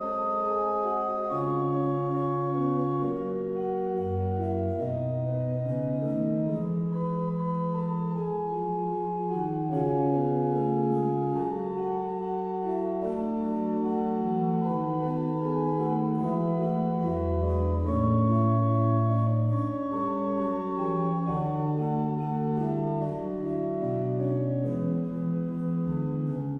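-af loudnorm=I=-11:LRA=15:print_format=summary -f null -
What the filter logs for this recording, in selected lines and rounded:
Input Integrated:    -28.3 LUFS
Input True Peak:     -14.0 dBTP
Input LRA:             3.5 LU
Input Threshold:     -38.3 LUFS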